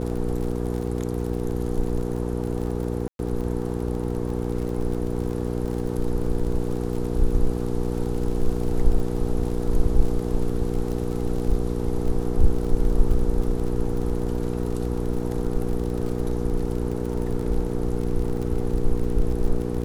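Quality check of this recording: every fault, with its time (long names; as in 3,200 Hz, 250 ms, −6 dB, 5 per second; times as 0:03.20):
surface crackle 39 per second −30 dBFS
mains hum 60 Hz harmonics 8 −27 dBFS
0:03.08–0:03.19: drop-out 112 ms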